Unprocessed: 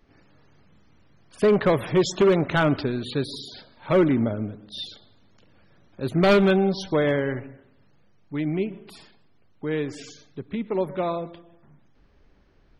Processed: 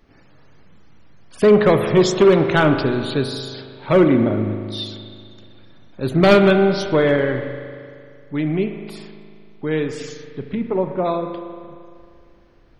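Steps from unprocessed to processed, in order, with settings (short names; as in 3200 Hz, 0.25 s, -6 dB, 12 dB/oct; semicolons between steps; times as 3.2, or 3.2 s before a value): 10.54–11.04 LPF 2200 Hz -> 1200 Hz 12 dB/oct; spring tank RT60 2.3 s, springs 38 ms, chirp 35 ms, DRR 7 dB; gain +5 dB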